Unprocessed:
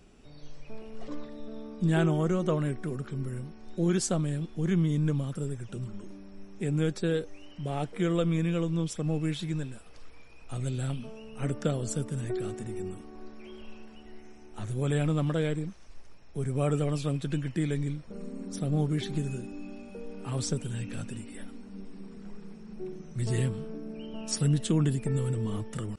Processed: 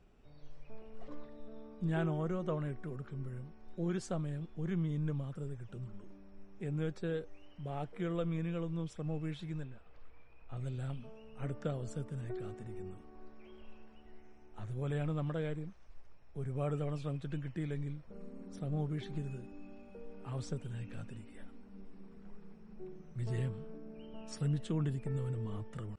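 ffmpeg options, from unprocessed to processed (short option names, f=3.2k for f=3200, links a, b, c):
-filter_complex "[0:a]asettb=1/sr,asplit=3[a][b][c];[a]atrim=end=9.644[d];[b]atrim=start=9.64:end=10.57,asetpts=PTS-STARTPTS,afade=t=in:d=0.004:c=qsin,afade=t=out:st=0.926:d=0.004:c=qsin,lowpass=3.7k[e];[c]atrim=start=10.566[f];[d][e]acrossfade=d=0.004:c1=hsin:c2=qsin[g];[g][f]acrossfade=d=0.004:c1=qsin:c2=hsin,lowpass=f=1.5k:p=1,equalizer=f=260:t=o:w=1.6:g=-6,volume=-5dB"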